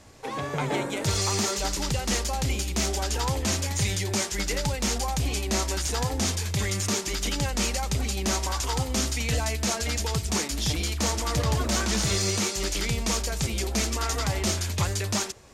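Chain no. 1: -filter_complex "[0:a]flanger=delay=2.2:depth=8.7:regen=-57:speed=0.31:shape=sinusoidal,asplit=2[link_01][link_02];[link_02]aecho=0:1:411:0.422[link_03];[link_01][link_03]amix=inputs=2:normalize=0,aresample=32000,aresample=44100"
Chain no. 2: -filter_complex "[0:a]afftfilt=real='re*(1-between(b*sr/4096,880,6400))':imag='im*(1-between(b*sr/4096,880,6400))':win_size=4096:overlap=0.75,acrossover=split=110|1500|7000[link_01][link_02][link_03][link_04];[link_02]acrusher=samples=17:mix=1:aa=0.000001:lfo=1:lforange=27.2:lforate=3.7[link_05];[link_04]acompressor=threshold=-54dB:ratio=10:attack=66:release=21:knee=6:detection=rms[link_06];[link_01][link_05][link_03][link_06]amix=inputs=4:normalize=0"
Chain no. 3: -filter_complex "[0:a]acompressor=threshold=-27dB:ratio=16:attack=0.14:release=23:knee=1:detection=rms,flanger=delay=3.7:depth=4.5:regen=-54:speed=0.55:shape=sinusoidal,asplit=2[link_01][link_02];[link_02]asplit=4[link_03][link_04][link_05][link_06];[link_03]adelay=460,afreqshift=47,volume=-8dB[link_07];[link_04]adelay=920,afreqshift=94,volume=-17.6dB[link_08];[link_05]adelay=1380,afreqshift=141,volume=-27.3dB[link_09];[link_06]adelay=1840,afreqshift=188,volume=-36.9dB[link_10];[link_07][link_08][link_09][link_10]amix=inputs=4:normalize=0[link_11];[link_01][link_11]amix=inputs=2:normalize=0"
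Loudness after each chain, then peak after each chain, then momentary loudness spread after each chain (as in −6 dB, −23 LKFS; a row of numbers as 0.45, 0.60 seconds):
−30.0, −29.5, −37.0 LKFS; −16.5, −15.0, −25.0 dBFS; 3, 3, 1 LU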